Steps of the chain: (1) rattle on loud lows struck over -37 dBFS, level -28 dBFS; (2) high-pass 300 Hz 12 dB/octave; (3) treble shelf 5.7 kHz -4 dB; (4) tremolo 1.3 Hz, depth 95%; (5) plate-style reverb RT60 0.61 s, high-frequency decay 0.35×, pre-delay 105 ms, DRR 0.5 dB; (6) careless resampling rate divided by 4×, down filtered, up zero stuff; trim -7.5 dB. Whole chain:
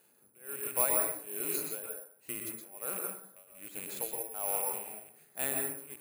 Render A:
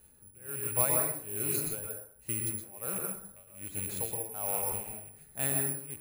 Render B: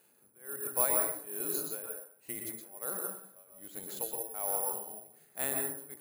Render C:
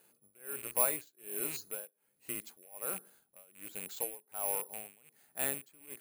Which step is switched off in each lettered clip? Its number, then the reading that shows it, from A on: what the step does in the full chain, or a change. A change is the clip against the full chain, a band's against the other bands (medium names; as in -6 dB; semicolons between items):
2, 125 Hz band +14.0 dB; 1, 2 kHz band -2.0 dB; 5, momentary loudness spread change +2 LU